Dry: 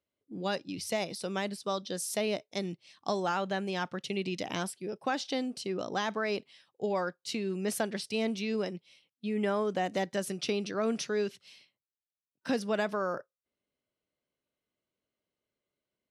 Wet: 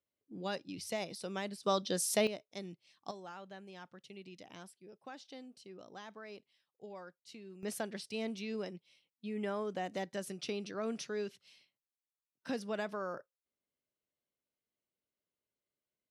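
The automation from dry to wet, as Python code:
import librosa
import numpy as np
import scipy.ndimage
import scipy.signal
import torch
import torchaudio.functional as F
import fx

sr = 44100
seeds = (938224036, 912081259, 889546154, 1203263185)

y = fx.gain(x, sr, db=fx.steps((0.0, -6.0), (1.63, 1.5), (2.27, -10.0), (3.11, -17.5), (7.63, -7.5)))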